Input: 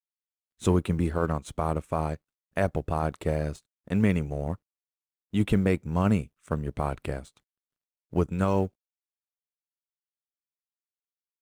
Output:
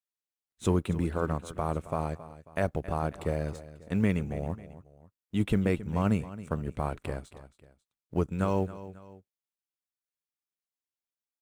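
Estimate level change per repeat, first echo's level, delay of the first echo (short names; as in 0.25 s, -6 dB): -7.0 dB, -15.5 dB, 0.271 s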